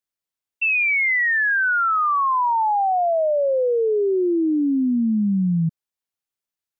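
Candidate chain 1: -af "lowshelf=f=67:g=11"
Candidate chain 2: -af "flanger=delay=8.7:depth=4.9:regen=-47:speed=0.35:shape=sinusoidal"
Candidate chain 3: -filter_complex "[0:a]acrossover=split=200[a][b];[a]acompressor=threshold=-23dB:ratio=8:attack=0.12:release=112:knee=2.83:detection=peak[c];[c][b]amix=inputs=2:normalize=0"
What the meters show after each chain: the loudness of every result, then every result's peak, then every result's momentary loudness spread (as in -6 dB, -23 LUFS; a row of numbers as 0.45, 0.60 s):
-19.0, -23.0, -19.5 LUFS; -14.5, -17.0, -16.5 dBFS; 3, 5, 4 LU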